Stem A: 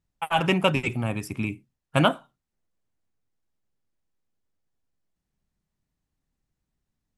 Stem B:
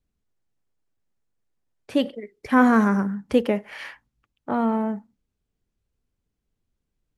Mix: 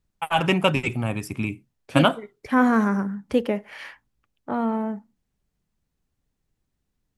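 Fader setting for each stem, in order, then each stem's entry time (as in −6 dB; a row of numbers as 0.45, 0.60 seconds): +1.5, −2.0 decibels; 0.00, 0.00 seconds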